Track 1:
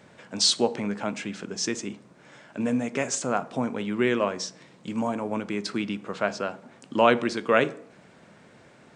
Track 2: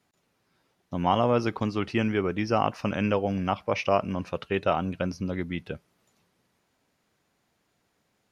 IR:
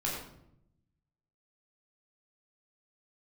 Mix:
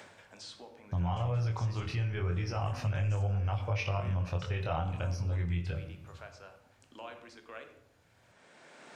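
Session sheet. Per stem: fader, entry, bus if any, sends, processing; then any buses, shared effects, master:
−11.5 dB, 0.00 s, send −20 dB, low-shelf EQ 250 Hz −10.5 dB; multiband upward and downward compressor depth 70%; automatic ducking −12 dB, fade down 0.20 s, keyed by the second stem
+1.0 dB, 0.00 s, send −10.5 dB, low shelf with overshoot 160 Hz +14 dB, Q 3; brickwall limiter −18 dBFS, peak gain reduction 11.5 dB; chorus effect 0.3 Hz, delay 19.5 ms, depth 5.4 ms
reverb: on, RT60 0.75 s, pre-delay 12 ms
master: low-shelf EQ 170 Hz −10 dB; downward compressor 2.5 to 1, threshold −30 dBFS, peak gain reduction 6 dB

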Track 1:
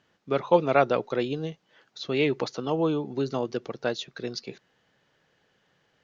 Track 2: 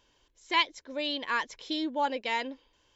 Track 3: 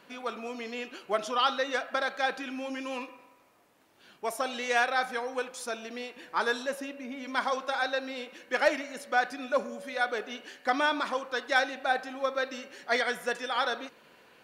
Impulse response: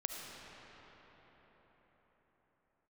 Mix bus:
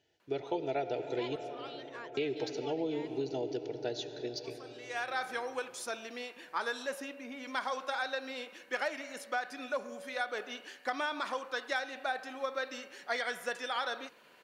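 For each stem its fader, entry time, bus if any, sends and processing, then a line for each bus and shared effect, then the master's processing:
−5.5 dB, 0.00 s, muted 0:01.36–0:02.17, send −5 dB, phaser with its sweep stopped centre 480 Hz, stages 4; notch comb filter 540 Hz; de-essing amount 80%
−18.5 dB, 0.65 s, no send, no processing
−2.0 dB, 0.20 s, no send, low-shelf EQ 280 Hz −7.5 dB; automatic ducking −21 dB, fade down 0.40 s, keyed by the first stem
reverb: on, pre-delay 30 ms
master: downward compressor 6 to 1, threshold −30 dBFS, peak gain reduction 9.5 dB

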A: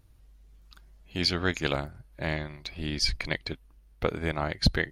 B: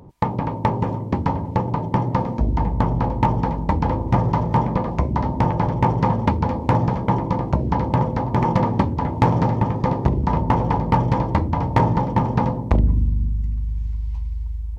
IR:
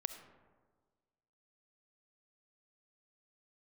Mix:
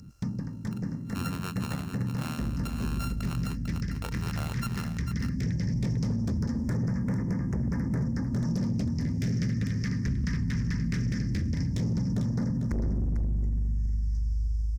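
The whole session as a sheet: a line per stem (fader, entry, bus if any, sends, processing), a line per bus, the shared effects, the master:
+1.0 dB, 0.00 s, no send, echo send −8.5 dB, samples sorted by size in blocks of 32 samples; downward compressor 3 to 1, threshold −39 dBFS, peak gain reduction 17 dB
0.0 dB, 0.00 s, no send, echo send −10 dB, drawn EQ curve 130 Hz 0 dB, 230 Hz +3 dB, 380 Hz −15 dB, 880 Hz −22 dB, 1,800 Hz +11 dB, 3,500 Hz −19 dB, 5,200 Hz +15 dB, 11,000 Hz −2 dB; hard clipping −17 dBFS, distortion −11 dB; all-pass phaser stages 2, 0.17 Hz, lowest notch 650–3,400 Hz; automatic ducking −9 dB, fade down 0.50 s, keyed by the first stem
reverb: not used
echo: single-tap delay 448 ms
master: low-shelf EQ 130 Hz −5 dB; brickwall limiter −22.5 dBFS, peak gain reduction 8.5 dB

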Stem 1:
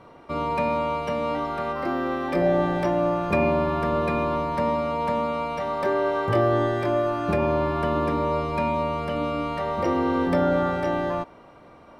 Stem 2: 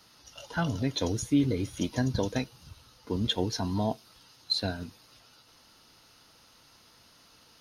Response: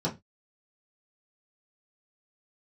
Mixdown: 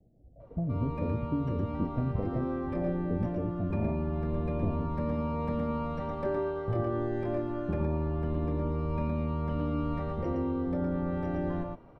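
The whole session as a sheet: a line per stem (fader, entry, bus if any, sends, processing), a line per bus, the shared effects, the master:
−15.0 dB, 0.40 s, no send, echo send −4 dB, no processing
−5.0 dB, 0.00 s, no send, no echo send, Butterworth low-pass 740 Hz 96 dB per octave; downward compressor 4 to 1, threshold −31 dBFS, peak gain reduction 10 dB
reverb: not used
echo: single-tap delay 115 ms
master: spectral tilt −3.5 dB per octave; speech leveller within 5 dB 0.5 s

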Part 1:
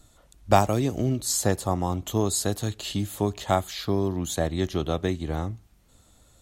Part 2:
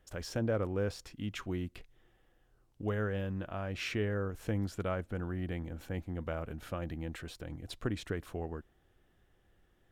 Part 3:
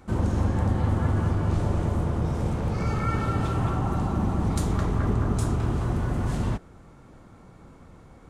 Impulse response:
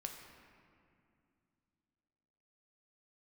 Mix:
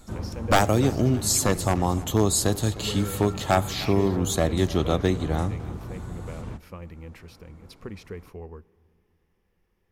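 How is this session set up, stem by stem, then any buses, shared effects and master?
+2.0 dB, 0.00 s, send −12.5 dB, echo send −18 dB, wave folding −13 dBFS
−4.5 dB, 0.00 s, send −13.5 dB, no echo send, EQ curve with evenly spaced ripples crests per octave 0.84, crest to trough 9 dB
−5.0 dB, 0.00 s, no send, no echo send, automatic ducking −6 dB, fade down 0.35 s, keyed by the first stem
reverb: on, RT60 2.4 s, pre-delay 4 ms
echo: repeating echo 304 ms, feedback 39%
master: no processing

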